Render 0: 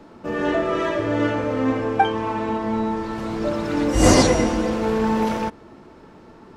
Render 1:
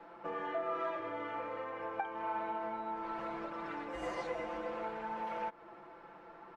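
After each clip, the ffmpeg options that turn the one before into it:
-filter_complex "[0:a]acompressor=threshold=-29dB:ratio=6,acrossover=split=510 2700:gain=0.141 1 0.1[a][b][c];[a][b][c]amix=inputs=3:normalize=0,aecho=1:1:5.9:0.85,volume=-4.5dB"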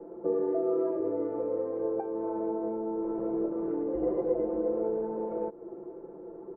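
-af "lowpass=f=410:t=q:w=4.9,volume=7dB"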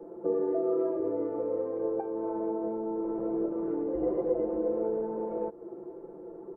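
-ar 44100 -c:a libvorbis -b:a 48k

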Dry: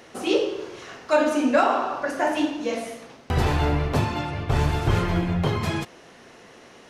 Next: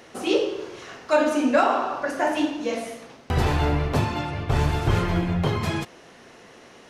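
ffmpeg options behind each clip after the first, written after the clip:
-af anull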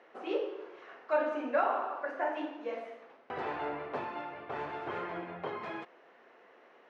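-af "asuperpass=centerf=910:order=4:qfactor=0.51,volume=-9dB"

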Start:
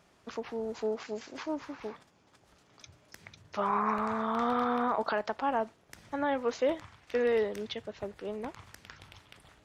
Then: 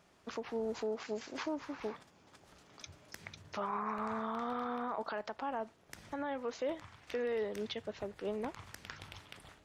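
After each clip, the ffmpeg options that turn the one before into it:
-af "bandreject=f=60:t=h:w=6,bandreject=f=120:t=h:w=6,dynaudnorm=f=250:g=3:m=5dB,alimiter=level_in=1.5dB:limit=-24dB:level=0:latency=1:release=450,volume=-1.5dB,volume=-2.5dB"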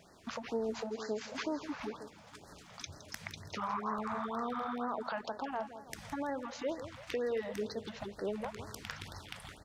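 -af "acompressor=threshold=-49dB:ratio=1.5,aecho=1:1:165|330|495|660|825:0.251|0.118|0.0555|0.0261|0.0123,afftfilt=real='re*(1-between(b*sr/1024,300*pow(2900/300,0.5+0.5*sin(2*PI*2.1*pts/sr))/1.41,300*pow(2900/300,0.5+0.5*sin(2*PI*2.1*pts/sr))*1.41))':imag='im*(1-between(b*sr/1024,300*pow(2900/300,0.5+0.5*sin(2*PI*2.1*pts/sr))/1.41,300*pow(2900/300,0.5+0.5*sin(2*PI*2.1*pts/sr))*1.41))':win_size=1024:overlap=0.75,volume=7dB"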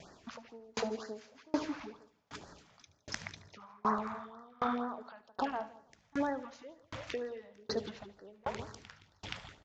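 -af "aecho=1:1:74|148|222|296|370|444:0.211|0.12|0.0687|0.0391|0.0223|0.0127,aresample=16000,aresample=44100,aeval=exprs='val(0)*pow(10,-34*if(lt(mod(1.3*n/s,1),2*abs(1.3)/1000),1-mod(1.3*n/s,1)/(2*abs(1.3)/1000),(mod(1.3*n/s,1)-2*abs(1.3)/1000)/(1-2*abs(1.3)/1000))/20)':c=same,volume=8dB"

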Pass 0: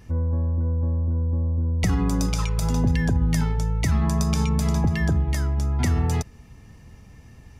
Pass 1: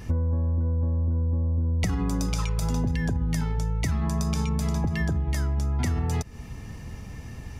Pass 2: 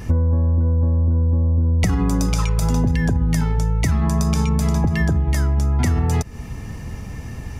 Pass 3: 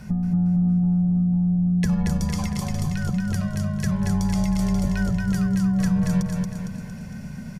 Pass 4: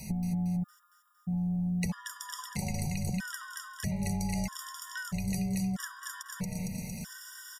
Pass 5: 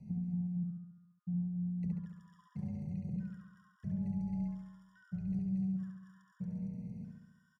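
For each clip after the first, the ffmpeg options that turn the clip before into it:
-af "acompressor=threshold=-30dB:ratio=12,volume=8dB"
-af "equalizer=f=3.8k:w=1.1:g=-3,volume=7.5dB"
-af "aecho=1:1:229|458|687|916|1145|1374|1603:0.708|0.368|0.191|0.0995|0.0518|0.0269|0.014,afreqshift=-260,volume=-7dB"
-filter_complex "[0:a]acrossover=split=470|2500[a][b][c];[a]acompressor=threshold=-25dB:ratio=4[d];[b]acompressor=threshold=-38dB:ratio=4[e];[c]acompressor=threshold=-53dB:ratio=4[f];[d][e][f]amix=inputs=3:normalize=0,crystalizer=i=8:c=0,afftfilt=real='re*gt(sin(2*PI*0.78*pts/sr)*(1-2*mod(floor(b*sr/1024/960),2)),0)':imag='im*gt(sin(2*PI*0.78*pts/sr)*(1-2*mod(floor(b*sr/1024/960),2)),0)':win_size=1024:overlap=0.75,volume=-5dB"
-filter_complex "[0:a]bandpass=f=160:t=q:w=1.4:csg=0,asplit=2[a][b];[b]aecho=0:1:69|138|207|276|345|414|483|552:0.668|0.388|0.225|0.13|0.0756|0.0439|0.0254|0.0148[c];[a][c]amix=inputs=2:normalize=0,volume=-4.5dB"

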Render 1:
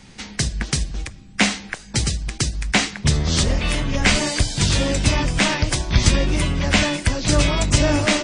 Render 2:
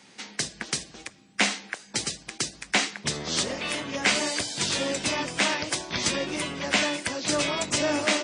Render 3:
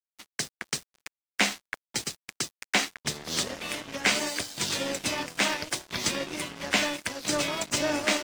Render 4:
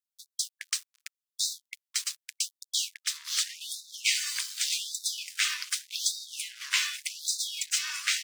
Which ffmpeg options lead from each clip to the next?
-af "highpass=290,volume=-4.5dB"
-af "aeval=exprs='sgn(val(0))*max(abs(val(0))-0.0168,0)':c=same"
-af "tiltshelf=f=1.4k:g=-7.5,afftfilt=real='re*gte(b*sr/1024,930*pow(3600/930,0.5+0.5*sin(2*PI*0.85*pts/sr)))':imag='im*gte(b*sr/1024,930*pow(3600/930,0.5+0.5*sin(2*PI*0.85*pts/sr)))':win_size=1024:overlap=0.75,volume=-5dB"

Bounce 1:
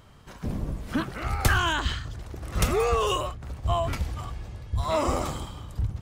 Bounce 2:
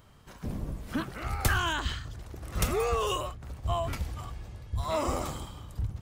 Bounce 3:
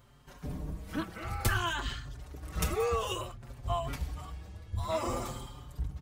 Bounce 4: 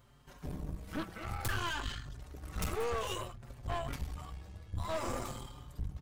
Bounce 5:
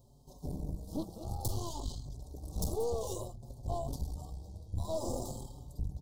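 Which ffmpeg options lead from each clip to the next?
-af "highshelf=f=11k:g=7,volume=-4.5dB"
-filter_complex "[0:a]asplit=2[a][b];[b]adelay=5.3,afreqshift=0.56[c];[a][c]amix=inputs=2:normalize=1"
-af "aeval=exprs='(tanh(39.8*val(0)+0.7)-tanh(0.7))/39.8':c=same,volume=1dB"
-af "asuperstop=centerf=1900:order=8:qfactor=0.58,volume=2dB"

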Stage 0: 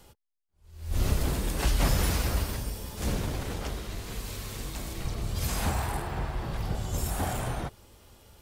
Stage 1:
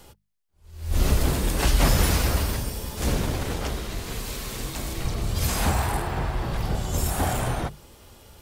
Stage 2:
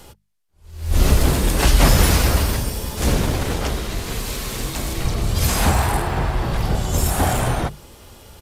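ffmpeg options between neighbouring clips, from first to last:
-af "bandreject=f=50:t=h:w=6,bandreject=f=100:t=h:w=6,bandreject=f=150:t=h:w=6,bandreject=f=200:t=h:w=6,volume=6dB"
-af "aresample=32000,aresample=44100,volume=6dB"

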